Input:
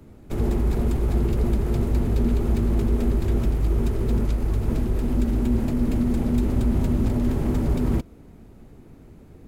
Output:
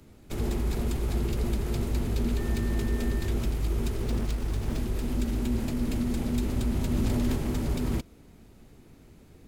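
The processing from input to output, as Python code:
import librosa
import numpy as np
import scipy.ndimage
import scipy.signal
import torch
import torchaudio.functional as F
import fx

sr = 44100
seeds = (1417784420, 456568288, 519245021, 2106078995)

y = fx.self_delay(x, sr, depth_ms=0.51, at=(4.02, 4.78))
y = fx.peak_eq(y, sr, hz=4100.0, db=3.5, octaves=2.1)
y = fx.dmg_tone(y, sr, hz=1800.0, level_db=-43.0, at=(2.36, 3.27), fade=0.02)
y = fx.high_shelf(y, sr, hz=2000.0, db=8.0)
y = fx.env_flatten(y, sr, amount_pct=70, at=(6.91, 7.35), fade=0.02)
y = y * librosa.db_to_amplitude(-6.5)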